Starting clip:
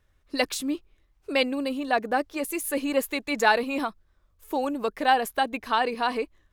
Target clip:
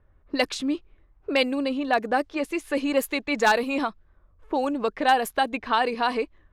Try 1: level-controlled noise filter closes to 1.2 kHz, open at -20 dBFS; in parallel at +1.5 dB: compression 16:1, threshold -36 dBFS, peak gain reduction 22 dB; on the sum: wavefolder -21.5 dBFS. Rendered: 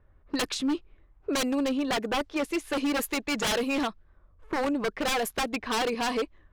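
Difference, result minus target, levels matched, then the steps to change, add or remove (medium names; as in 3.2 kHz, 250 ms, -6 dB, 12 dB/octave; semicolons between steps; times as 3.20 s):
wavefolder: distortion +24 dB
change: wavefolder -10 dBFS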